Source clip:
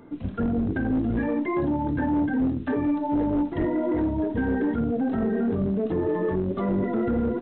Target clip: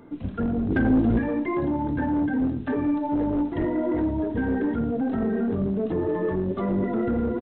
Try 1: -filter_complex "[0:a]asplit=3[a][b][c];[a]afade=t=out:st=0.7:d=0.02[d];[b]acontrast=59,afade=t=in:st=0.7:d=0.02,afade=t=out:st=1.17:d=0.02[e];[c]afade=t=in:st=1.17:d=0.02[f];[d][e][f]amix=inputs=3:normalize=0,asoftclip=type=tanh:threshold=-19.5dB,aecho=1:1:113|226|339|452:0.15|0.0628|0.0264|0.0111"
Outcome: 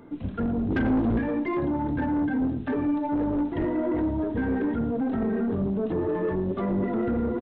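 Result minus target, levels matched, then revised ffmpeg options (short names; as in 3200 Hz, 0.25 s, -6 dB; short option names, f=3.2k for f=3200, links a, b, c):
soft clip: distortion +9 dB
-filter_complex "[0:a]asplit=3[a][b][c];[a]afade=t=out:st=0.7:d=0.02[d];[b]acontrast=59,afade=t=in:st=0.7:d=0.02,afade=t=out:st=1.17:d=0.02[e];[c]afade=t=in:st=1.17:d=0.02[f];[d][e][f]amix=inputs=3:normalize=0,asoftclip=type=tanh:threshold=-12.5dB,aecho=1:1:113|226|339|452:0.15|0.0628|0.0264|0.0111"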